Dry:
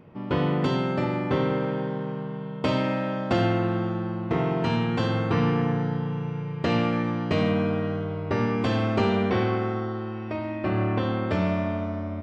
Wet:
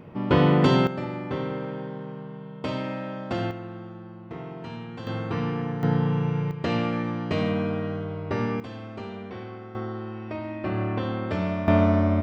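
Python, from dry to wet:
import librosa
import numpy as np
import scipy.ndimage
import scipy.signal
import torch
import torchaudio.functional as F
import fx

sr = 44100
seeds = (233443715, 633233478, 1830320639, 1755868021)

y = fx.gain(x, sr, db=fx.steps((0.0, 5.5), (0.87, -5.5), (3.51, -12.5), (5.07, -5.0), (5.83, 5.0), (6.51, -2.0), (8.6, -14.0), (9.75, -2.5), (11.68, 10.0)))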